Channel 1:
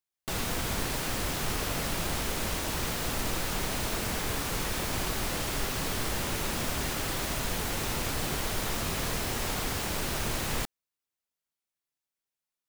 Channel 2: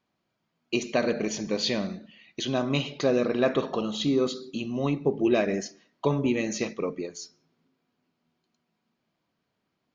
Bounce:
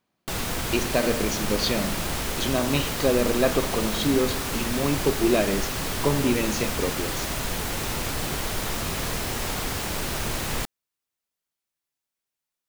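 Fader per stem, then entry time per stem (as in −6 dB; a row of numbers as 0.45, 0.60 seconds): +3.0, +1.5 decibels; 0.00, 0.00 seconds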